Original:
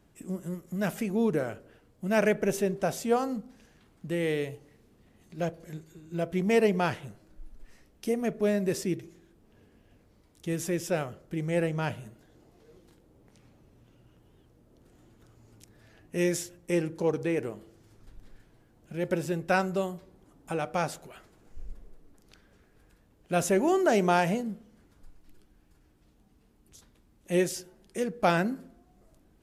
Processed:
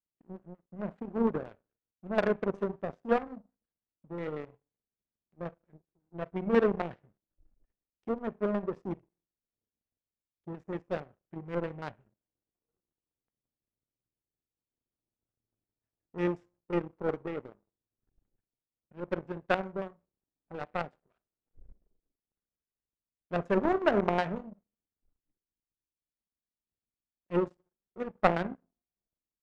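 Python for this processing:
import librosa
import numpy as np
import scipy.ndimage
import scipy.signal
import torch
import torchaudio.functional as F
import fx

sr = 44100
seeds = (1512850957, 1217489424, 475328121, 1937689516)

y = fx.filter_lfo_lowpass(x, sr, shape='square', hz=5.5, low_hz=570.0, high_hz=1500.0, q=0.86)
y = fx.rev_schroeder(y, sr, rt60_s=0.37, comb_ms=31, drr_db=12.0)
y = fx.power_curve(y, sr, exponent=2.0)
y = y * librosa.db_to_amplitude(5.0)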